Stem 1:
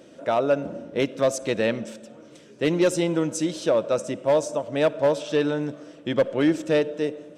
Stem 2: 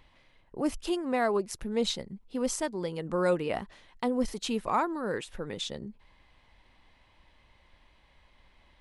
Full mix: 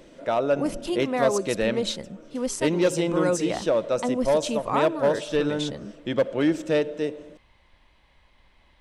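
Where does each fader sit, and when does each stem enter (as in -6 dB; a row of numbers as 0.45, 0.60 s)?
-1.5, +2.0 dB; 0.00, 0.00 s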